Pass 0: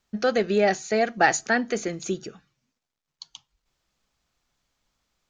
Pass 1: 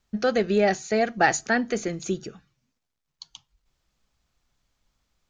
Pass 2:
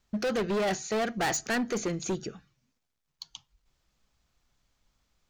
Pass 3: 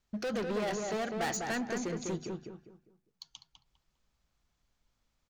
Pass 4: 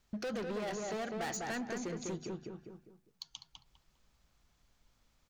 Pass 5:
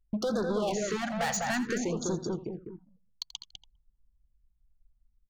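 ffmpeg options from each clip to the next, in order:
ffmpeg -i in.wav -af "lowshelf=frequency=140:gain=8.5,volume=-1dB" out.wav
ffmpeg -i in.wav -af "volume=25.5dB,asoftclip=hard,volume=-25.5dB" out.wav
ffmpeg -i in.wav -filter_complex "[0:a]asplit=2[link_01][link_02];[link_02]adelay=201,lowpass=frequency=1800:poles=1,volume=-3dB,asplit=2[link_03][link_04];[link_04]adelay=201,lowpass=frequency=1800:poles=1,volume=0.33,asplit=2[link_05][link_06];[link_06]adelay=201,lowpass=frequency=1800:poles=1,volume=0.33,asplit=2[link_07][link_08];[link_08]adelay=201,lowpass=frequency=1800:poles=1,volume=0.33[link_09];[link_01][link_03][link_05][link_07][link_09]amix=inputs=5:normalize=0,volume=-6dB" out.wav
ffmpeg -i in.wav -af "acompressor=threshold=-51dB:ratio=2,volume=6dB" out.wav
ffmpeg -i in.wav -af "anlmdn=0.00631,aecho=1:1:84:0.168,afftfilt=real='re*(1-between(b*sr/1024,310*pow(2500/310,0.5+0.5*sin(2*PI*0.57*pts/sr))/1.41,310*pow(2500/310,0.5+0.5*sin(2*PI*0.57*pts/sr))*1.41))':imag='im*(1-between(b*sr/1024,310*pow(2500/310,0.5+0.5*sin(2*PI*0.57*pts/sr))/1.41,310*pow(2500/310,0.5+0.5*sin(2*PI*0.57*pts/sr))*1.41))':win_size=1024:overlap=0.75,volume=8.5dB" out.wav

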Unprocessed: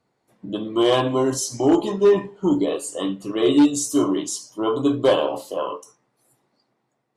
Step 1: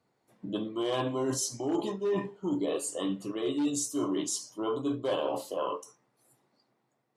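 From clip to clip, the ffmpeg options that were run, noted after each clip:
ffmpeg -i in.wav -af "highpass=56,areverse,acompressor=threshold=-24dB:ratio=6,areverse,volume=-3.5dB" out.wav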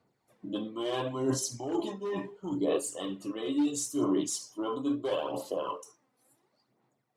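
ffmpeg -i in.wav -af "aphaser=in_gain=1:out_gain=1:delay=4:decay=0.5:speed=0.73:type=sinusoidal,volume=-2.5dB" out.wav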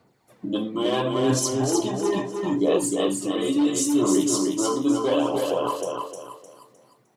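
ffmpeg -i in.wav -filter_complex "[0:a]asplit=2[link_01][link_02];[link_02]acompressor=threshold=-39dB:ratio=6,volume=-2dB[link_03];[link_01][link_03]amix=inputs=2:normalize=0,aecho=1:1:306|612|918|1224:0.631|0.208|0.0687|0.0227,volume=6dB" out.wav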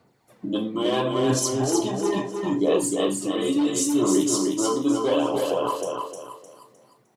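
ffmpeg -i in.wav -filter_complex "[0:a]asplit=2[link_01][link_02];[link_02]adelay=36,volume=-14dB[link_03];[link_01][link_03]amix=inputs=2:normalize=0" out.wav

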